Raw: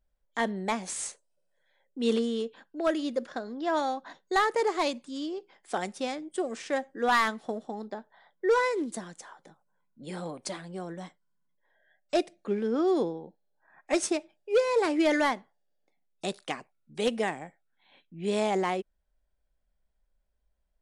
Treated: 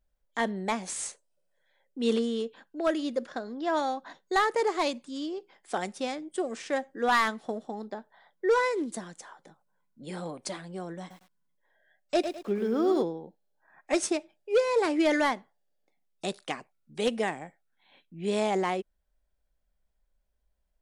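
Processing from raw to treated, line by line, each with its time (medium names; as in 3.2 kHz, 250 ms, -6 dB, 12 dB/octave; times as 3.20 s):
11.00–13.02 s: bit-crushed delay 104 ms, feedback 35%, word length 9-bit, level -8 dB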